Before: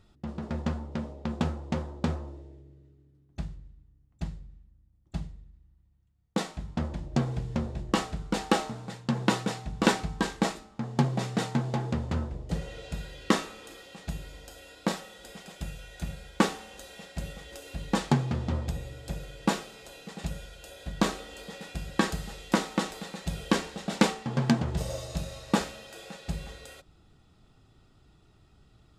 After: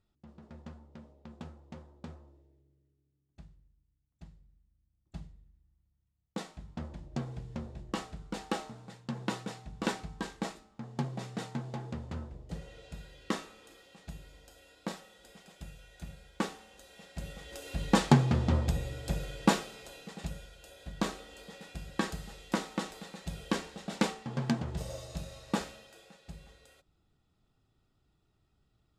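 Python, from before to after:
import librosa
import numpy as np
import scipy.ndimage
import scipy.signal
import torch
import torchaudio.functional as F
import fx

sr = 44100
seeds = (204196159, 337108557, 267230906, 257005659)

y = fx.gain(x, sr, db=fx.line((4.28, -17.0), (5.18, -9.5), (16.83, -9.5), (17.84, 2.5), (19.34, 2.5), (20.54, -6.5), (25.72, -6.5), (26.13, -13.5)))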